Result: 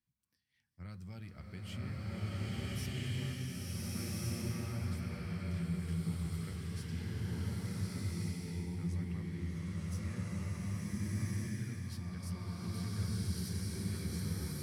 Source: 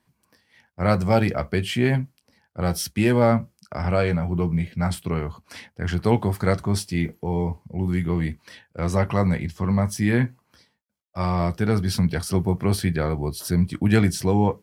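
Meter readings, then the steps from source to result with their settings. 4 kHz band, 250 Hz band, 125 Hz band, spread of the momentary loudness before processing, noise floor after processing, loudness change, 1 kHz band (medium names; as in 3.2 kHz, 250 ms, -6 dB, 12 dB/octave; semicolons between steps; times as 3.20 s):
-13.0 dB, -17.0 dB, -13.5 dB, 9 LU, -78 dBFS, -16.5 dB, -25.5 dB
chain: amplifier tone stack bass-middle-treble 6-0-2; compression, threshold -39 dBFS, peak gain reduction 9.5 dB; swelling reverb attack 1460 ms, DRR -10 dB; trim -4.5 dB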